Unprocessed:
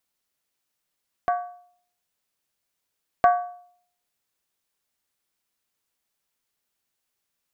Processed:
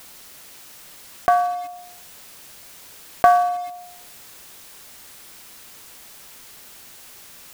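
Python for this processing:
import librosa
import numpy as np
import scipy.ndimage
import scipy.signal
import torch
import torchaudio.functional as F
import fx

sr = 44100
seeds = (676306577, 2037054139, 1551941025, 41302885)

p1 = fx.quant_companded(x, sr, bits=4)
p2 = x + (p1 * librosa.db_to_amplitude(-11.0))
p3 = fx.env_flatten(p2, sr, amount_pct=50)
y = p3 * librosa.db_to_amplitude(2.0)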